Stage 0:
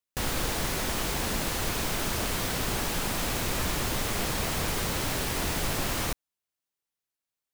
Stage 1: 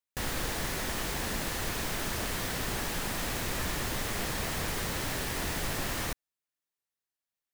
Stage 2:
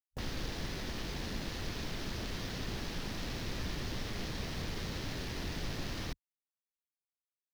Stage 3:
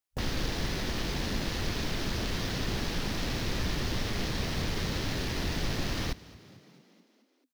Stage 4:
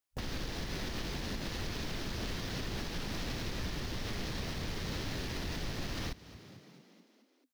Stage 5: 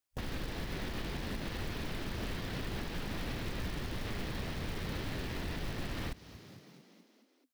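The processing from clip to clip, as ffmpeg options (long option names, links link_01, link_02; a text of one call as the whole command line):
ffmpeg -i in.wav -af "equalizer=frequency=1800:width=4.9:gain=4.5,volume=-4dB" out.wav
ffmpeg -i in.wav -filter_complex "[0:a]afwtdn=0.00708,acrossover=split=420|3000[link_01][link_02][link_03];[link_02]acompressor=threshold=-46dB:ratio=4[link_04];[link_01][link_04][link_03]amix=inputs=3:normalize=0,volume=-2.5dB" out.wav
ffmpeg -i in.wav -filter_complex "[0:a]asplit=7[link_01][link_02][link_03][link_04][link_05][link_06][link_07];[link_02]adelay=219,afreqshift=40,volume=-20.5dB[link_08];[link_03]adelay=438,afreqshift=80,volume=-24.4dB[link_09];[link_04]adelay=657,afreqshift=120,volume=-28.3dB[link_10];[link_05]adelay=876,afreqshift=160,volume=-32.1dB[link_11];[link_06]adelay=1095,afreqshift=200,volume=-36dB[link_12];[link_07]adelay=1314,afreqshift=240,volume=-39.9dB[link_13];[link_01][link_08][link_09][link_10][link_11][link_12][link_13]amix=inputs=7:normalize=0,volume=7dB" out.wav
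ffmpeg -i in.wav -af "alimiter=level_in=4dB:limit=-24dB:level=0:latency=1:release=238,volume=-4dB" out.wav
ffmpeg -i in.wav -filter_complex "[0:a]acrossover=split=3900[link_01][link_02];[link_02]acompressor=threshold=-59dB:ratio=4:attack=1:release=60[link_03];[link_01][link_03]amix=inputs=2:normalize=0,acrusher=bits=4:mode=log:mix=0:aa=0.000001" out.wav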